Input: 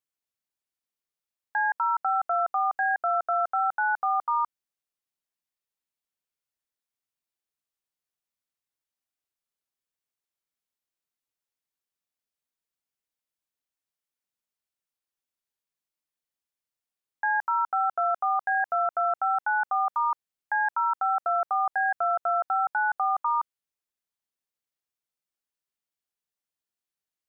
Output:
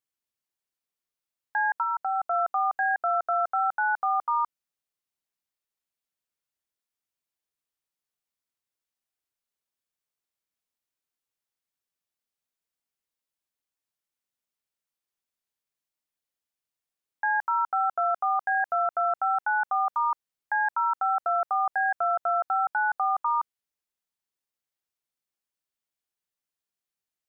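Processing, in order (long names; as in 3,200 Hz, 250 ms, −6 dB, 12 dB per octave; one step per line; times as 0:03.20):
0:01.82–0:02.33: parametric band 950 Hz → 1,800 Hz −7 dB 0.4 octaves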